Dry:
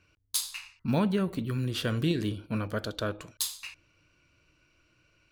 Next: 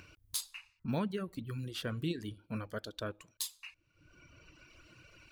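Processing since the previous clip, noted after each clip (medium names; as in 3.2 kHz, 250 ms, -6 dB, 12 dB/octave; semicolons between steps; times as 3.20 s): reverb removal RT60 1.2 s; upward compressor, threshold -36 dBFS; trim -7 dB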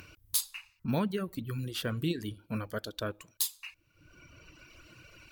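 peaking EQ 16 kHz +12.5 dB 0.56 oct; trim +4 dB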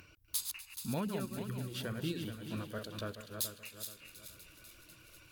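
backward echo that repeats 214 ms, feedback 61%, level -5.5 dB; feedback echo behind a high-pass 247 ms, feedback 85%, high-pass 1.6 kHz, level -17 dB; trim -6.5 dB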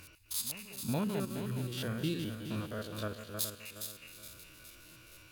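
spectrogram pixelated in time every 50 ms; reverse echo 441 ms -19.5 dB; trim +4 dB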